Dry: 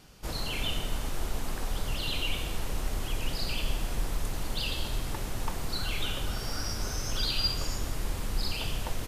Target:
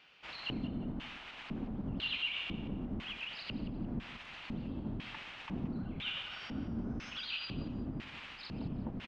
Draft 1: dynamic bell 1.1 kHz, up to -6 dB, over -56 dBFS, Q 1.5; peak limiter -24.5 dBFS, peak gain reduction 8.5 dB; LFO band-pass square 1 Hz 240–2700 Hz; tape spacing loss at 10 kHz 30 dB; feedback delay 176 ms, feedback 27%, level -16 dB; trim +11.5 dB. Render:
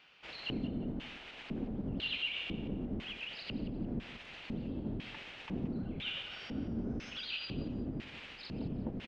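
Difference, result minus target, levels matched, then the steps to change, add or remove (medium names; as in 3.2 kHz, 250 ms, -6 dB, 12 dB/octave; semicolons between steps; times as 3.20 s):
500 Hz band +3.5 dB
change: dynamic bell 450 Hz, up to -6 dB, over -56 dBFS, Q 1.5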